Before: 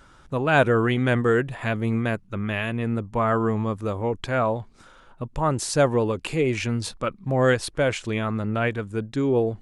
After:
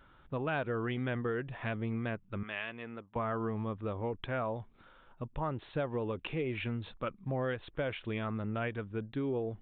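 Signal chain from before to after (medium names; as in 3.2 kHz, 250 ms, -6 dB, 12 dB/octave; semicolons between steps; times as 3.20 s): 2.43–3.16 s: high-pass 830 Hz 6 dB/octave; compression 6:1, threshold -22 dBFS, peak gain reduction 9.5 dB; resampled via 8 kHz; trim -8.5 dB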